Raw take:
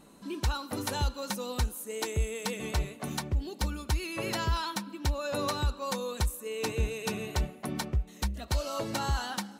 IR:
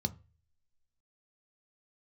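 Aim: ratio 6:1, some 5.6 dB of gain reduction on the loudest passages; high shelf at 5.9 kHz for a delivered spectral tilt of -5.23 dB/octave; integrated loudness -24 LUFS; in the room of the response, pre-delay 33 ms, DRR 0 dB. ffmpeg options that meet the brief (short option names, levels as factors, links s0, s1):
-filter_complex "[0:a]highshelf=f=5900:g=4.5,acompressor=threshold=0.0355:ratio=6,asplit=2[s0][s1];[1:a]atrim=start_sample=2205,adelay=33[s2];[s1][s2]afir=irnorm=-1:irlink=0,volume=0.794[s3];[s0][s3]amix=inputs=2:normalize=0,volume=1.58"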